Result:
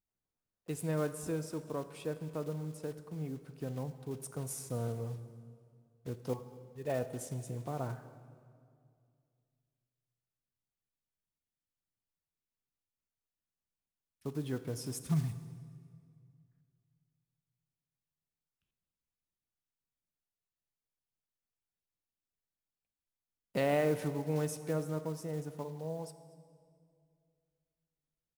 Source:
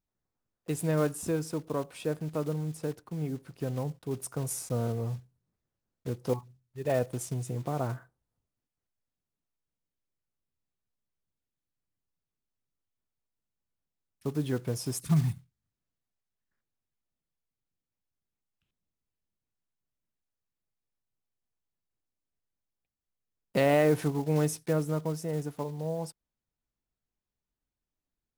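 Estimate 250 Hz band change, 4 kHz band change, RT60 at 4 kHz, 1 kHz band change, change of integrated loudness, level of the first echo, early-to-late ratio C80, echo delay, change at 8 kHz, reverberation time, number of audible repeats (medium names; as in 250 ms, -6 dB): -6.5 dB, -6.0 dB, 1.7 s, -6.0 dB, -6.5 dB, -23.0 dB, 13.0 dB, 235 ms, -6.0 dB, 2.2 s, 1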